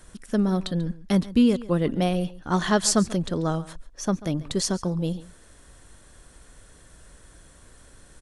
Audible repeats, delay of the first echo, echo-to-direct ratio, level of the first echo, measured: 1, 139 ms, -18.5 dB, -18.5 dB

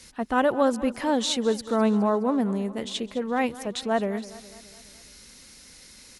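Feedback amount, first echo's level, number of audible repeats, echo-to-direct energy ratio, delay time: 54%, -17.0 dB, 4, -15.5 dB, 208 ms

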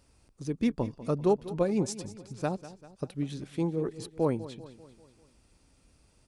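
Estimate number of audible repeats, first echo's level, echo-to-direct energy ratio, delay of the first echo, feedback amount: 4, -16.0 dB, -14.5 dB, 196 ms, 53%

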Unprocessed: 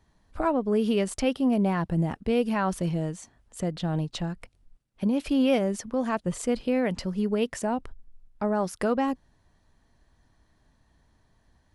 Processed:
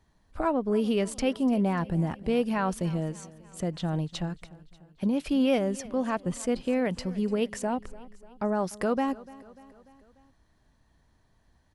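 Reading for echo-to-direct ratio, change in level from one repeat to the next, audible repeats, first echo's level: -18.5 dB, -5.0 dB, 3, -20.0 dB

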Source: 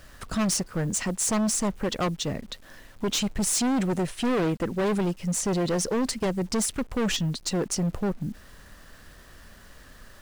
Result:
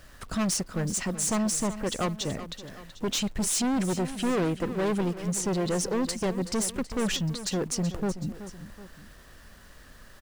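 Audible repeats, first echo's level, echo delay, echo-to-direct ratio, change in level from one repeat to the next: 2, -13.0 dB, 377 ms, -12.0 dB, -5.5 dB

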